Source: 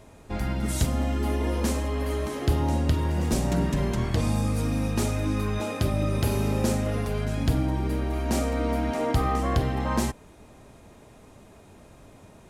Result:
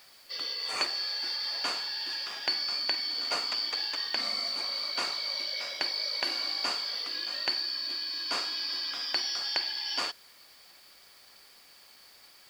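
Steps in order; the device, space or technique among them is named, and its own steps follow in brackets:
high-shelf EQ 2,300 Hz +9.5 dB
split-band scrambled radio (band-splitting scrambler in four parts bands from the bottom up 4321; band-pass filter 350–2,900 Hz; white noise bed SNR 27 dB)

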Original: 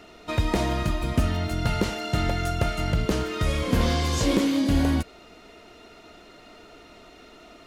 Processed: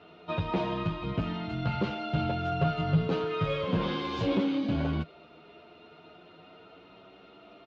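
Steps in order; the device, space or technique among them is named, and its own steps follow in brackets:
barber-pole flanger into a guitar amplifier (barber-pole flanger 9.3 ms +0.34 Hz; soft clipping −17.5 dBFS, distortion −20 dB; loudspeaker in its box 110–3,500 Hz, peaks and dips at 160 Hz +8 dB, 250 Hz −5 dB, 1,900 Hz −9 dB)
0:02.51–0:03.63: comb filter 7.3 ms, depth 61%

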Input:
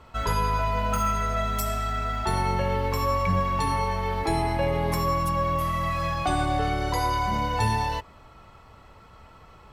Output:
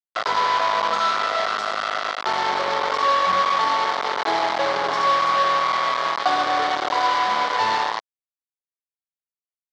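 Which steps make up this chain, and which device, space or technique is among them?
hand-held game console (bit reduction 4 bits; loudspeaker in its box 480–4,600 Hz, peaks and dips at 710 Hz +3 dB, 1,100 Hz +5 dB, 2,600 Hz −8 dB)
level +3.5 dB

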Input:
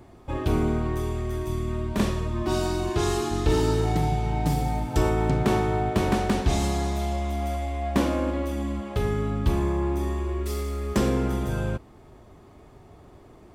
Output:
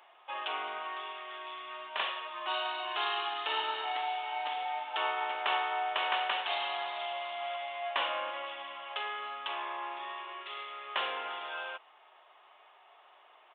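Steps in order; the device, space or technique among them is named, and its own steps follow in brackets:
musical greeting card (downsampling to 8,000 Hz; high-pass filter 770 Hz 24 dB per octave; parametric band 2,900 Hz +9 dB 0.31 octaves)

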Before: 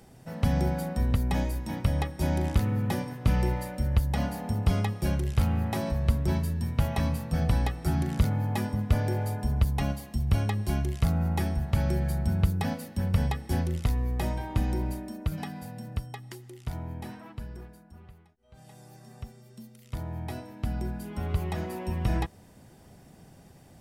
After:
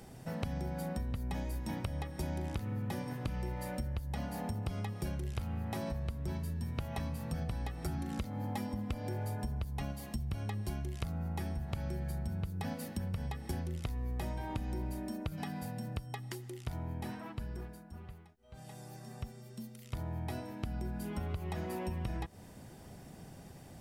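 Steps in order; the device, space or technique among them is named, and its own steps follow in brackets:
0:07.98–0:09.09: comb filter 3.8 ms, depth 59%
serial compression, peaks first (downward compressor 6 to 1, threshold −32 dBFS, peak gain reduction 15.5 dB; downward compressor 1.5 to 1, threshold −41 dBFS, peak gain reduction 5 dB)
level +1.5 dB

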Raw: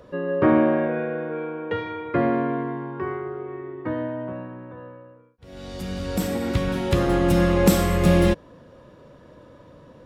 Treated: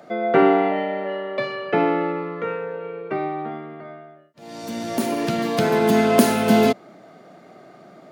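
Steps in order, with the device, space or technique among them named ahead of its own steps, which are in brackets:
nightcore (speed change +24%)
high-pass filter 160 Hz 24 dB per octave
level +2.5 dB

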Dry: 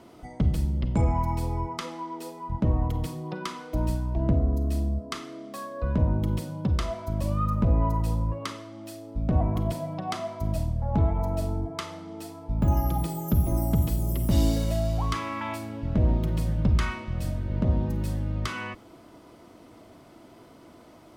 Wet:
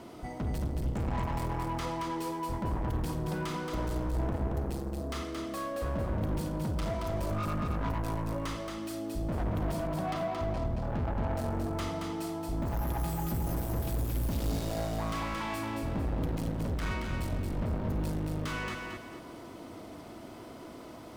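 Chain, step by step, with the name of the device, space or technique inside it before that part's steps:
0:09.87–0:11.36: high-frequency loss of the air 130 metres
saturation between pre-emphasis and de-emphasis (high-shelf EQ 2,300 Hz +9 dB; soft clipping −34.5 dBFS, distortion −4 dB; high-shelf EQ 2,300 Hz −9 dB)
feedback echo at a low word length 225 ms, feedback 35%, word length 12 bits, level −4 dB
level +3.5 dB

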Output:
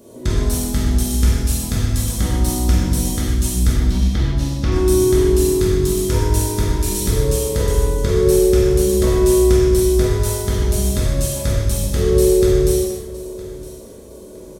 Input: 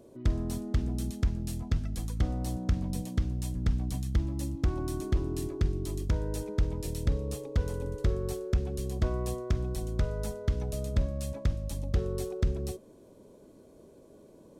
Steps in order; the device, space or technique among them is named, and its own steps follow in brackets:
bathroom (convolution reverb RT60 0.55 s, pre-delay 40 ms, DRR 3.5 dB)
0:03.74–0:04.72: low-pass filter 5,100 Hz 24 dB per octave
high-shelf EQ 4,600 Hz +11 dB
repeating echo 963 ms, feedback 29%, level −18 dB
reverb whose tail is shaped and stops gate 320 ms falling, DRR −6.5 dB
level +5.5 dB

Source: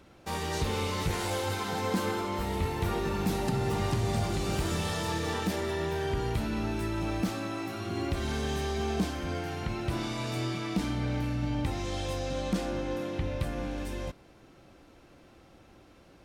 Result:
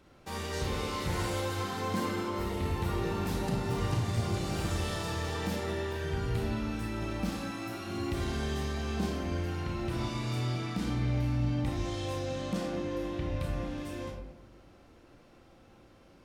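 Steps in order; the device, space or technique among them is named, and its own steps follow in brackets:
0:07.32–0:08.24: high-shelf EQ 5,700 Hz +5.5 dB
bathroom (convolution reverb RT60 0.85 s, pre-delay 27 ms, DRR 0.5 dB)
level −5 dB

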